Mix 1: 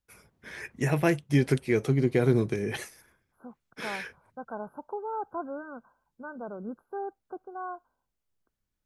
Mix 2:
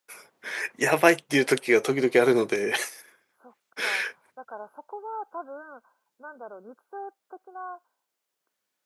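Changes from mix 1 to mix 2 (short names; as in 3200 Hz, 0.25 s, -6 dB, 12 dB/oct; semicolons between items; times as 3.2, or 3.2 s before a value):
first voice +10.0 dB; master: add HPF 480 Hz 12 dB/oct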